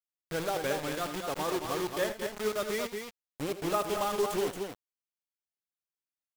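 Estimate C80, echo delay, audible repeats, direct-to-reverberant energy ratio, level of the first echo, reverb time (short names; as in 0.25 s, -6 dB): none, 80 ms, 2, none, -12.5 dB, none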